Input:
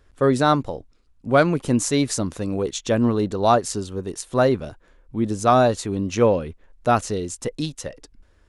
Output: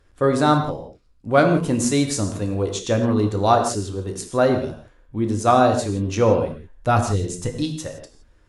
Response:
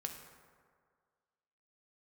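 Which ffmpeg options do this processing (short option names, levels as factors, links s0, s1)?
-filter_complex "[0:a]asettb=1/sr,asplit=3[s0][s1][s2];[s0]atrim=end=6.374[s3];[s1]atrim=start=6.37:end=7.51,asetpts=PTS-STARTPTS,afade=t=in:d=0.004:c=qsin,afade=t=out:st=1.136:d=0.004:c=qsin,asubboost=boost=7.5:cutoff=190[s4];[s2]atrim=start=7.506[s5];[s3][s4]acrossfade=d=0.004:c1=hsin:c2=qsin[s6];[s6][s5]acrossfade=d=0.004:c1=qsin:c2=hsin[s7];[1:a]atrim=start_sample=2205,afade=t=out:st=0.16:d=0.01,atrim=end_sample=7497,asetrate=28224,aresample=44100[s8];[s7][s8]afir=irnorm=-1:irlink=0"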